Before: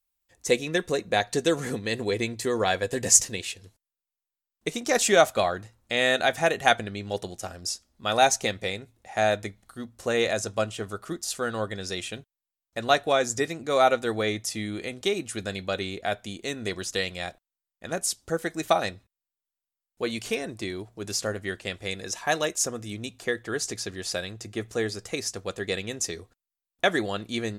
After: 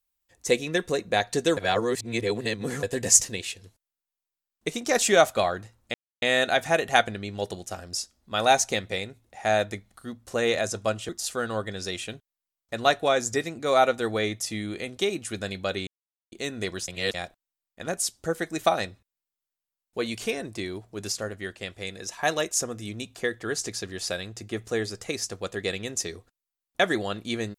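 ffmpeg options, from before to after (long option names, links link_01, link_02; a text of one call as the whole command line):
ffmpeg -i in.wav -filter_complex "[0:a]asplit=11[link_01][link_02][link_03][link_04][link_05][link_06][link_07][link_08][link_09][link_10][link_11];[link_01]atrim=end=1.572[link_12];[link_02]atrim=start=1.568:end=2.832,asetpts=PTS-STARTPTS,areverse[link_13];[link_03]atrim=start=2.828:end=5.94,asetpts=PTS-STARTPTS,afade=type=out:start_time=3.108:duration=0.004:curve=hsin,apad=pad_dur=0.28[link_14];[link_04]atrim=start=5.94:end=10.812,asetpts=PTS-STARTPTS,afade=type=in:duration=0.004:curve=hsin[link_15];[link_05]atrim=start=11.128:end=15.91,asetpts=PTS-STARTPTS,afade=type=out:start_time=4.778:duration=0.004:curve=hsin[link_16];[link_06]atrim=start=15.91:end=16.36,asetpts=PTS-STARTPTS,volume=0[link_17];[link_07]atrim=start=16.36:end=16.922,asetpts=PTS-STARTPTS,afade=type=in:duration=0.004:curve=hsin[link_18];[link_08]atrim=start=16.918:end=17.182,asetpts=PTS-STARTPTS,areverse[link_19];[link_09]atrim=start=17.178:end=21.162[link_20];[link_10]atrim=start=21.158:end=22.232,asetpts=PTS-STARTPTS,volume=-3dB[link_21];[link_11]atrim=start=22.228[link_22];[link_12][link_13]acrossfade=duration=0.004:curve1=hsin:curve2=hsin[link_23];[link_14][link_15]concat=n=2:v=0:a=1[link_24];[link_23][link_24]acrossfade=duration=0.004:curve1=hsin:curve2=hsin[link_25];[link_16][link_17][link_18]concat=n=3:v=0:a=1[link_26];[link_25][link_26]acrossfade=duration=0.004:curve1=hsin:curve2=hsin[link_27];[link_27][link_19]acrossfade=duration=0.004:curve1=hsin:curve2=hsin[link_28];[link_28][link_20]acrossfade=duration=0.004:curve1=hsin:curve2=hsin[link_29];[link_29][link_21]acrossfade=duration=0.004:curve1=hsin:curve2=hsin[link_30];[link_30][link_22]acrossfade=duration=0.004:curve1=hsin:curve2=hsin" out.wav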